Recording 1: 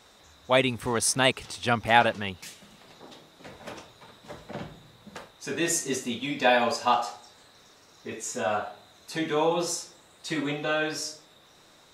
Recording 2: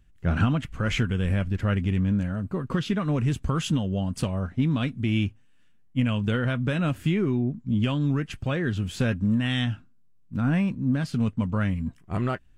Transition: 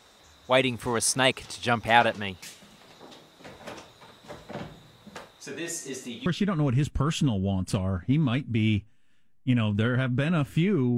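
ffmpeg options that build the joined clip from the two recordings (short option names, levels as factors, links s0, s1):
-filter_complex "[0:a]asettb=1/sr,asplit=3[s0][s1][s2];[s0]atrim=end=5.264[s3];[s1]atrim=start=5.26:end=6.26,asetpts=PTS-STARTPTS,afade=t=in:d=0.004:c=qsin,afade=t=out:st=0.996:d=0.004:c=qsin,acompressor=threshold=0.00708:ratio=1.5:attack=3.2:release=140:knee=1:detection=peak[s4];[s2]atrim=start=6.256[s5];[s3][s4]acrossfade=d=0.004:c1=hsin:c2=qsin[s6];[s6][s5]acrossfade=d=0.004:c1=qsin:c2=hsin,apad=whole_dur=10.97,atrim=end=10.97,atrim=end=6.262[s7];[1:a]atrim=start=2.748:end=7.46[s8];[s7][s8]acrossfade=d=0.004:c1=hsin:c2=hsin"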